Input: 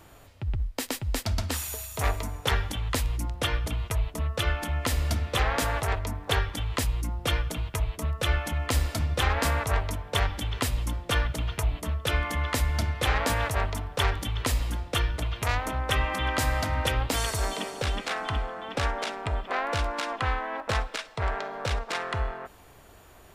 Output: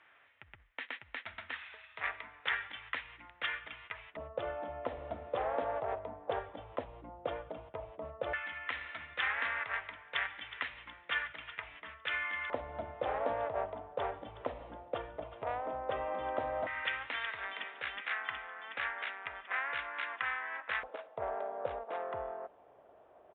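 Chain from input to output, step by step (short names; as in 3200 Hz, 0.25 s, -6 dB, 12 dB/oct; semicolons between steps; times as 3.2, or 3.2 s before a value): downsampling 8000 Hz; LFO band-pass square 0.12 Hz 610–1900 Hz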